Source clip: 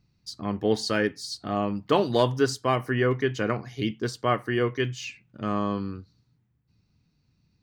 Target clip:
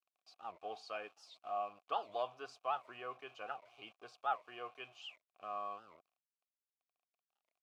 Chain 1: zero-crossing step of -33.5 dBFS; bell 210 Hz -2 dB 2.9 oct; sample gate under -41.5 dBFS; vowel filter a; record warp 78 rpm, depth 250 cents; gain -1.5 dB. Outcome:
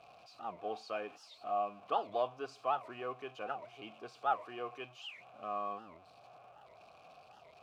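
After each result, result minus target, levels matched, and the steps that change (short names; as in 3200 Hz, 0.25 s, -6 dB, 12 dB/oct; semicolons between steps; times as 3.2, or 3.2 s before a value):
250 Hz band +6.0 dB; zero-crossing step: distortion +7 dB
change: bell 210 Hz -12.5 dB 2.9 oct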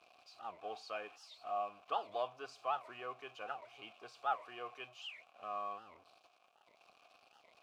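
zero-crossing step: distortion +7 dB
change: zero-crossing step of -41 dBFS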